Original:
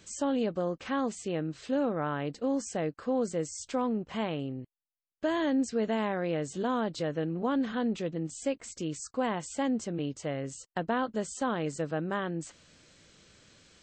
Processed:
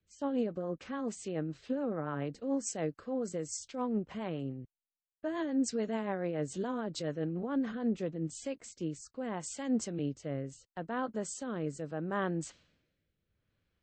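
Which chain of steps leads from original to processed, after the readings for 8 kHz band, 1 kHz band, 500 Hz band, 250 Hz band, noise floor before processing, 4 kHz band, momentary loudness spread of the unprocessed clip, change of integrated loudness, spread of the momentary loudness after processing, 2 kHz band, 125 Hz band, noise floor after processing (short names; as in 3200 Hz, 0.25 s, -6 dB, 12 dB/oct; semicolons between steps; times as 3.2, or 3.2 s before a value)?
-1.0 dB, -7.0 dB, -5.0 dB, -3.5 dB, -85 dBFS, -6.0 dB, 6 LU, -4.0 dB, 7 LU, -6.5 dB, -2.5 dB, under -85 dBFS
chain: low-pass opened by the level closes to 1900 Hz, open at -29.5 dBFS; dynamic EQ 3300 Hz, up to -4 dB, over -51 dBFS, Q 1.3; limiter -24.5 dBFS, peak gain reduction 6 dB; rotary speaker horn 7 Hz, later 0.75 Hz, at 7.58; three-band expander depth 70%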